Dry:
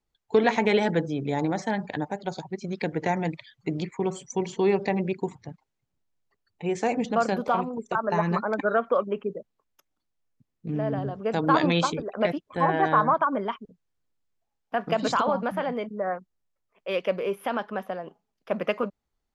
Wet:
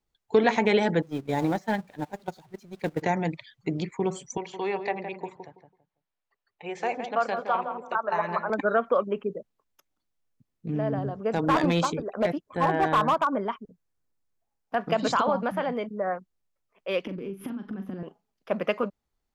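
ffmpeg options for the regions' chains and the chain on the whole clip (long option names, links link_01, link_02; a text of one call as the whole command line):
ffmpeg -i in.wav -filter_complex "[0:a]asettb=1/sr,asplit=3[link_01][link_02][link_03];[link_01]atrim=end=1.024[link_04];[link_02]atrim=start=1.02:end=3.02,asetpts=PTS-STARTPTS,afade=type=in:duration=0.004:curve=qsin,afade=type=out:start_time=1.996:duration=0.004:curve=qsin,aeval=exprs='val(0)+0.5*0.015*sgn(val(0))':channel_layout=same,agate=range=-19dB:threshold=-27dB:ratio=16:release=100:detection=peak[link_05];[link_03]atrim=start=3.016[link_06];[link_04][link_05]acrossfade=duration=0.004:curve1=hsin:curve2=qsin[link_07];[link_07][link_06]acrossfade=duration=0.004:curve1=qsin:curve2=hsin,asettb=1/sr,asplit=3[link_08][link_09][link_10];[link_08]atrim=end=4.374[link_11];[link_09]atrim=start=4.37:end=8.5,asetpts=PTS-STARTPTS,afade=type=in:duration=0.004:curve=qsin,afade=type=out:start_time=4.126:duration=0.004:curve=qsin,acrossover=split=500 4200:gain=0.178 1 0.224[link_12][link_13][link_14];[link_12][link_13][link_14]amix=inputs=3:normalize=0,asplit=2[link_15][link_16];[link_16]adelay=165,lowpass=frequency=1300:poles=1,volume=-7dB,asplit=2[link_17][link_18];[link_18]adelay=165,lowpass=frequency=1300:poles=1,volume=0.24,asplit=2[link_19][link_20];[link_20]adelay=165,lowpass=frequency=1300:poles=1,volume=0.24[link_21];[link_15][link_17][link_19][link_21]amix=inputs=4:normalize=0,atrim=end_sample=182133[link_22];[link_10]atrim=start=8.496[link_23];[link_11][link_22]acrossfade=duration=0.004:curve1=hsin:curve2=qsin[link_24];[link_24][link_23]acrossfade=duration=0.004:curve1=qsin:curve2=hsin,asettb=1/sr,asplit=3[link_25][link_26][link_27];[link_25]atrim=end=10.884[link_28];[link_26]atrim=start=10.88:end=14.75,asetpts=PTS-STARTPTS,afade=type=in:duration=0.004:curve=qsin,afade=type=out:start_time=3.866:duration=0.004:curve=qsin,equalizer=frequency=3200:width=1.2:gain=-4.5,volume=16.5dB,asoftclip=hard,volume=-16.5dB[link_29];[link_27]atrim=start=14.746[link_30];[link_28][link_29]acrossfade=duration=0.004:curve1=hsin:curve2=qsin[link_31];[link_31][link_30]acrossfade=duration=0.004:curve1=qsin:curve2=hsin,asettb=1/sr,asplit=3[link_32][link_33][link_34];[link_32]atrim=end=17.054[link_35];[link_33]atrim=start=17.05:end=18.03,asetpts=PTS-STARTPTS,afade=type=in:duration=0.004:curve=qsin,afade=type=out:start_time=0.976:duration=0.004:curve=qsin,lowshelf=frequency=410:width_type=q:width=3:gain=14,acompressor=threshold=-31dB:ratio=16:attack=3.2:release=140:knee=1:detection=peak,asplit=2[link_36][link_37];[link_37]adelay=41,volume=-9dB[link_38];[link_36][link_38]amix=inputs=2:normalize=0,atrim=end_sample=43218[link_39];[link_34]atrim=start=18.026[link_40];[link_35][link_39]acrossfade=duration=0.004:curve1=hsin:curve2=qsin[link_41];[link_41][link_40]acrossfade=duration=0.004:curve1=qsin:curve2=hsin" out.wav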